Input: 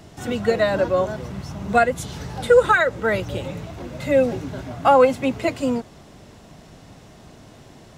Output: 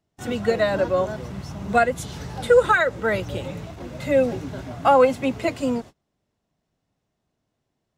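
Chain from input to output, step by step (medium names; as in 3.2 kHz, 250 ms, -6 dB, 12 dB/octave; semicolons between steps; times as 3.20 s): gate -35 dBFS, range -30 dB; trim -1.5 dB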